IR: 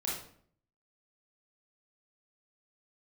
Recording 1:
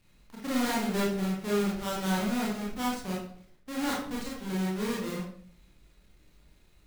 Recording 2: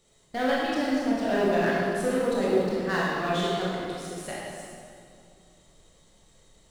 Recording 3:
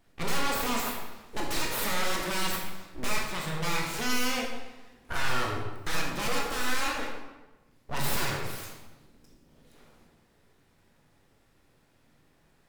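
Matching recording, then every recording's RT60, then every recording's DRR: 1; 0.60, 2.4, 1.1 seconds; −5.5, −6.5, −2.0 decibels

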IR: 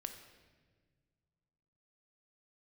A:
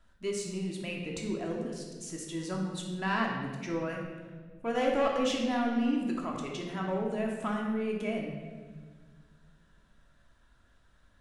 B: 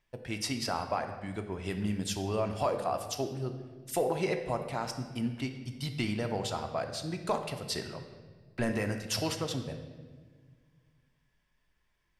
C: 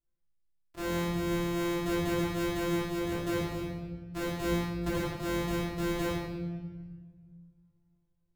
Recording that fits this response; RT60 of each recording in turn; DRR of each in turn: B; 1.5, 1.6, 1.5 seconds; −1.0, 6.0, −10.5 decibels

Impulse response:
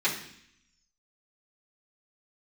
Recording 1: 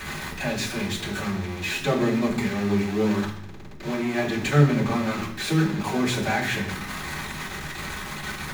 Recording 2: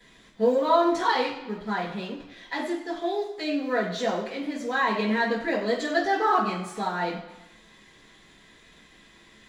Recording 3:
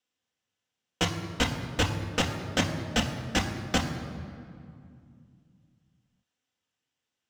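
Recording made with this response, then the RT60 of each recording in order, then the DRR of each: 1; 0.65, 1.0, 2.3 seconds; −10.5, −13.5, 1.5 decibels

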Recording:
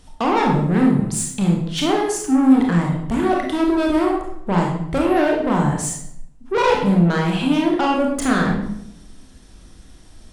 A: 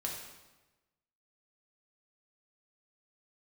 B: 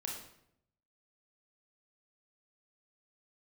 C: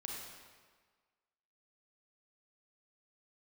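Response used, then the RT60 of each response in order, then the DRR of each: B; 1.1, 0.75, 1.5 seconds; −1.5, −1.5, −2.0 decibels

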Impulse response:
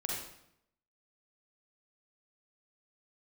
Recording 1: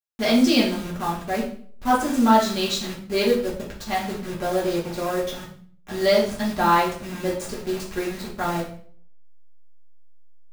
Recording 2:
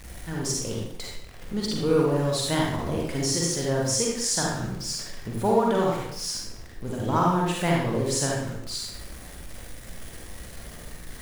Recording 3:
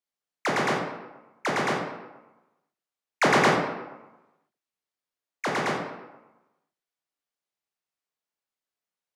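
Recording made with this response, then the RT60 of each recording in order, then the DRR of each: 2; 0.50, 0.75, 1.1 seconds; −6.5, −3.0, −1.0 decibels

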